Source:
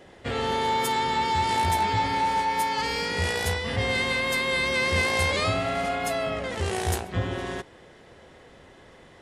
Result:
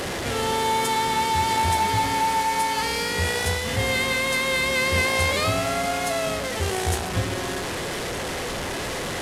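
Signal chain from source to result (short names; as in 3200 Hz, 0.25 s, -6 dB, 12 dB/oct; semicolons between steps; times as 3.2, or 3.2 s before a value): delta modulation 64 kbps, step -25 dBFS; gain +2 dB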